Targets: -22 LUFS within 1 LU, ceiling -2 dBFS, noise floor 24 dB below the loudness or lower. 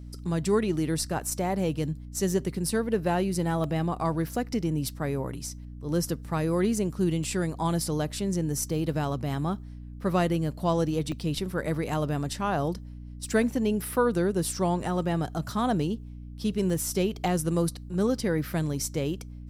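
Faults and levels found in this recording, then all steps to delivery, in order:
dropouts 7; longest dropout 1.4 ms; hum 60 Hz; highest harmonic 300 Hz; hum level -39 dBFS; loudness -28.5 LUFS; peak level -11.5 dBFS; loudness target -22.0 LUFS
-> interpolate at 0.77/3.64/7.24/11.12/11.89/14.57/16.70 s, 1.4 ms; hum notches 60/120/180/240/300 Hz; trim +6.5 dB

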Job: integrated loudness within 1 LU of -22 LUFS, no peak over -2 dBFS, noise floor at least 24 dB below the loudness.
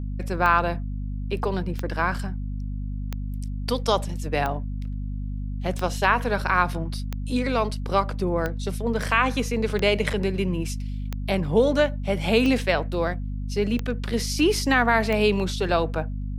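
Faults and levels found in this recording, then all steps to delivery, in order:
clicks found 12; hum 50 Hz; highest harmonic 250 Hz; hum level -27 dBFS; loudness -25.0 LUFS; peak level -6.5 dBFS; loudness target -22.0 LUFS
-> de-click; hum notches 50/100/150/200/250 Hz; trim +3 dB

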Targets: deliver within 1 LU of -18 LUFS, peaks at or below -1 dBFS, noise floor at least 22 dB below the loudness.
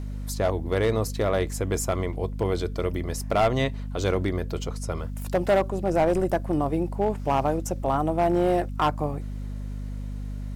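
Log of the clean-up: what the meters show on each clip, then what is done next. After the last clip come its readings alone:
clipped samples 1.2%; clipping level -15.5 dBFS; hum 50 Hz; highest harmonic 250 Hz; hum level -30 dBFS; loudness -26.5 LUFS; peak level -15.5 dBFS; loudness target -18.0 LUFS
-> clip repair -15.5 dBFS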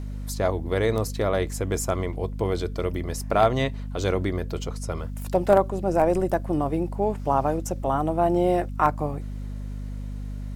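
clipped samples 0.0%; hum 50 Hz; highest harmonic 250 Hz; hum level -30 dBFS
-> de-hum 50 Hz, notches 5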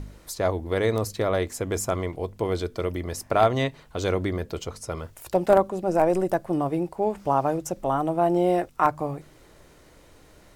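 hum not found; loudness -25.5 LUFS; peak level -6.0 dBFS; loudness target -18.0 LUFS
-> trim +7.5 dB; peak limiter -1 dBFS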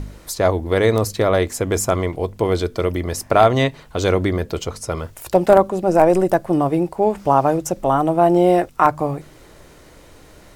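loudness -18.0 LUFS; peak level -1.0 dBFS; noise floor -46 dBFS

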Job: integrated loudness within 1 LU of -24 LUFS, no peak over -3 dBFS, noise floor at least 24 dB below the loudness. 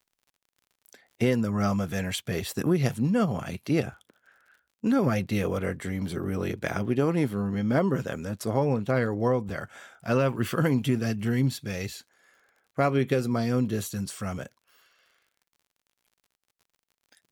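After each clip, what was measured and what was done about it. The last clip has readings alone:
tick rate 41 per s; loudness -27.5 LUFS; peak level -9.5 dBFS; loudness target -24.0 LUFS
-> de-click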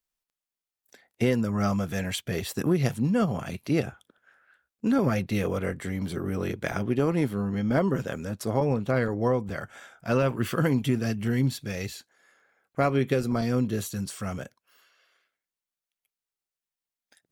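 tick rate 0.46 per s; loudness -27.5 LUFS; peak level -9.5 dBFS; loudness target -24.0 LUFS
-> trim +3.5 dB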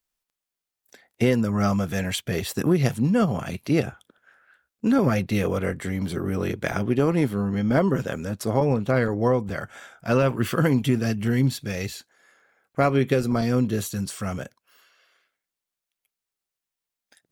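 loudness -24.0 LUFS; peak level -6.0 dBFS; noise floor -87 dBFS

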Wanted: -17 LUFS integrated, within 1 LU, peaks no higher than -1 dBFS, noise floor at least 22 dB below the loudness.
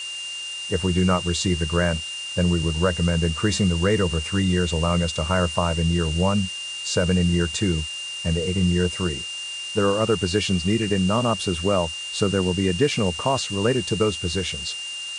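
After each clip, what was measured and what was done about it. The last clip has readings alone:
steady tone 2.8 kHz; tone level -30 dBFS; noise floor -32 dBFS; noise floor target -45 dBFS; loudness -22.5 LUFS; peak level -5.5 dBFS; loudness target -17.0 LUFS
-> band-stop 2.8 kHz, Q 30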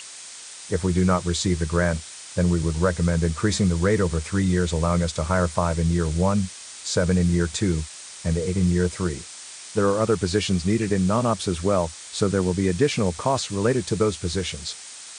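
steady tone not found; noise floor -41 dBFS; noise floor target -46 dBFS
-> noise print and reduce 6 dB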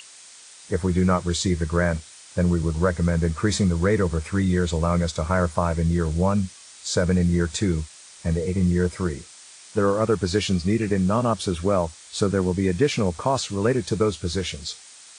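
noise floor -46 dBFS; loudness -23.5 LUFS; peak level -5.5 dBFS; loudness target -17.0 LUFS
-> trim +6.5 dB; peak limiter -1 dBFS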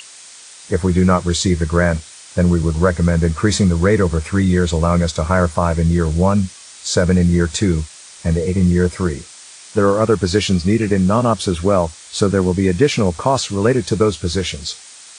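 loudness -17.0 LUFS; peak level -1.0 dBFS; noise floor -40 dBFS

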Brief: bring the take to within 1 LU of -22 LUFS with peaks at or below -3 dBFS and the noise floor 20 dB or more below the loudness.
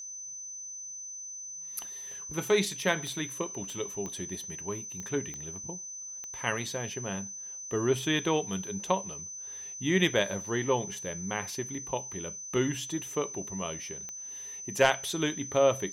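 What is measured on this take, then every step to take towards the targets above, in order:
clicks found 7; steady tone 6.1 kHz; tone level -39 dBFS; loudness -32.0 LUFS; peak level -9.5 dBFS; loudness target -22.0 LUFS
-> de-click; band-stop 6.1 kHz, Q 30; trim +10 dB; peak limiter -3 dBFS

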